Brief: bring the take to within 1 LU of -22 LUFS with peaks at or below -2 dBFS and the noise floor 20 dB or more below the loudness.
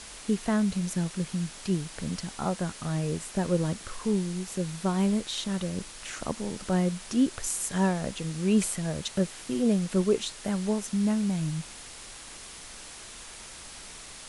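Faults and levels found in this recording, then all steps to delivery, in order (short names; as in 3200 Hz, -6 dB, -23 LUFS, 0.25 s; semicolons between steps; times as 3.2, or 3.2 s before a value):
noise floor -45 dBFS; noise floor target -49 dBFS; loudness -29.0 LUFS; peak -13.0 dBFS; loudness target -22.0 LUFS
-> noise print and reduce 6 dB; gain +7 dB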